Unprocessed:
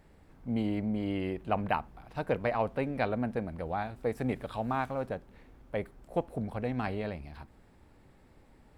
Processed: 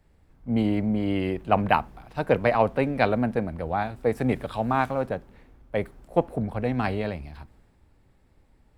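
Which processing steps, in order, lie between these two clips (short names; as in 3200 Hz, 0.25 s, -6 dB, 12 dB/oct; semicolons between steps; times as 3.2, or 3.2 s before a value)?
three-band expander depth 40%; gain +7.5 dB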